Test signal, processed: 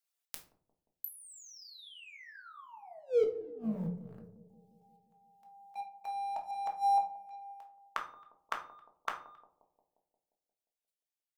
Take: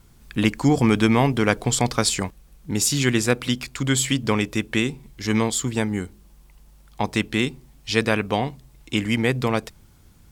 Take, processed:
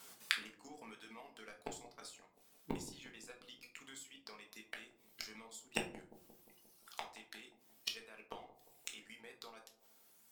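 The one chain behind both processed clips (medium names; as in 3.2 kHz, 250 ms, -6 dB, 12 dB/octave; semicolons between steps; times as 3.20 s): octave divider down 2 oct, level -5 dB; reverb removal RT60 1.6 s; high-pass 510 Hz 12 dB/octave; treble shelf 2.4 kHz +5.5 dB; level held to a coarse grid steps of 10 dB; waveshaping leveller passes 2; compression 4:1, threshold -31 dBFS; inverted gate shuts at -30 dBFS, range -29 dB; bucket-brigade echo 176 ms, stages 1024, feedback 63%, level -16 dB; simulated room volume 290 m³, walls furnished, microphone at 1.6 m; trim +5 dB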